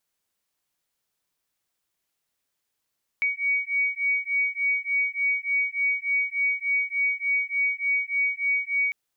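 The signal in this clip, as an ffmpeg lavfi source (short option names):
-f lavfi -i "aevalsrc='0.0531*(sin(2*PI*2250*t)+sin(2*PI*2253.4*t))':d=5.7:s=44100"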